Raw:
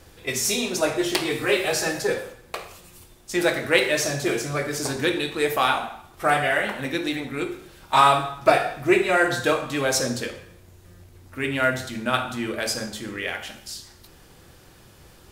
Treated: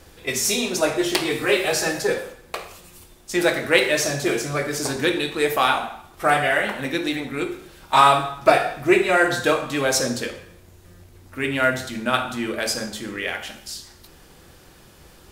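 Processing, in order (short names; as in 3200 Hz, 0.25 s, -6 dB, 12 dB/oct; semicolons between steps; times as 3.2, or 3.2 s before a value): bell 110 Hz -8 dB 0.29 oct; gain +2 dB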